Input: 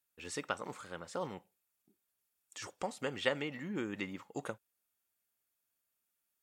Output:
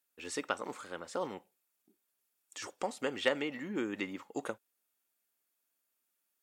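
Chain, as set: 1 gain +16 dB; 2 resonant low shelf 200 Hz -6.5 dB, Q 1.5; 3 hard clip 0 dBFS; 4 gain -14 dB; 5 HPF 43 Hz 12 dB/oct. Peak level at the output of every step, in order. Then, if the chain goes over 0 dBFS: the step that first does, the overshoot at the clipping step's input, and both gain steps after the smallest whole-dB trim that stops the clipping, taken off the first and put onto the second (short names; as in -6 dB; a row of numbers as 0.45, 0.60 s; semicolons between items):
+2.5, +3.0, 0.0, -14.0, -13.5 dBFS; step 1, 3.0 dB; step 1 +13 dB, step 4 -11 dB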